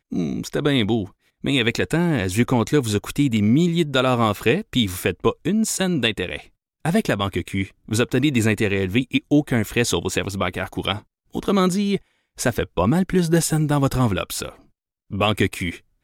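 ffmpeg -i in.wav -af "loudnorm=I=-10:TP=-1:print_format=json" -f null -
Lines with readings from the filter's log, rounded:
"input_i" : "-21.3",
"input_tp" : "-6.1",
"input_lra" : "2.1",
"input_thresh" : "-31.6",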